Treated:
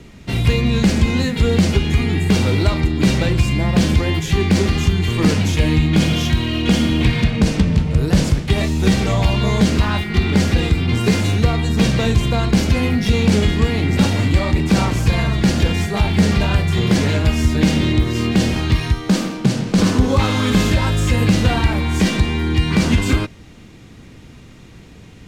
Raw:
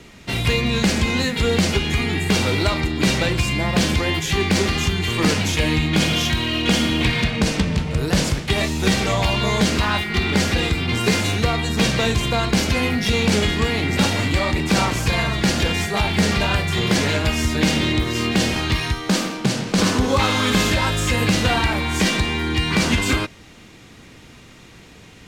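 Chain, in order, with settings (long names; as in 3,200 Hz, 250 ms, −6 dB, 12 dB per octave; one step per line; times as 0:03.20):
low-shelf EQ 370 Hz +10 dB
level −3 dB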